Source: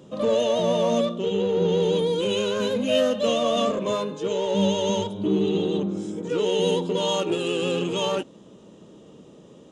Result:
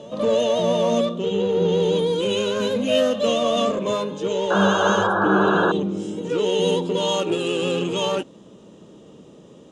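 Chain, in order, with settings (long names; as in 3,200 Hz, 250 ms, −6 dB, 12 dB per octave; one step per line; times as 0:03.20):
backwards echo 465 ms −21 dB
sound drawn into the spectrogram noise, 0:04.50–0:05.72, 320–1,700 Hz −23 dBFS
level +2 dB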